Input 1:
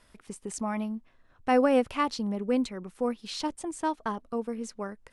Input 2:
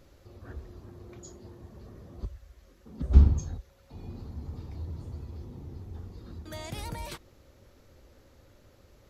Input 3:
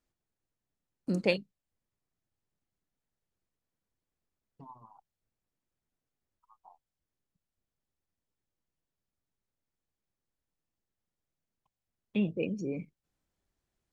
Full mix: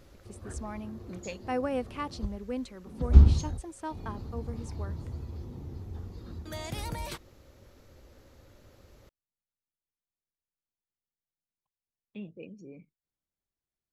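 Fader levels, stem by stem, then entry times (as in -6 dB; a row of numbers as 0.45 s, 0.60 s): -8.5 dB, +1.5 dB, -12.5 dB; 0.00 s, 0.00 s, 0.00 s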